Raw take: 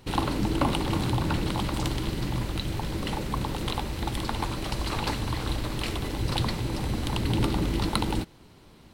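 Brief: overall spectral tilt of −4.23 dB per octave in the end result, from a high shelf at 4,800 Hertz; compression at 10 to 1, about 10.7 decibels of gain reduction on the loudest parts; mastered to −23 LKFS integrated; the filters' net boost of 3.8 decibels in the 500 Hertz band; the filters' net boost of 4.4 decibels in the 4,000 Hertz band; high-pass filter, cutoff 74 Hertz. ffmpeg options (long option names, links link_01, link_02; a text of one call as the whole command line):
ffmpeg -i in.wav -af "highpass=74,equalizer=frequency=500:width_type=o:gain=5,equalizer=frequency=4000:width_type=o:gain=9,highshelf=frequency=4800:gain=-8.5,acompressor=threshold=-31dB:ratio=10,volume=12.5dB" out.wav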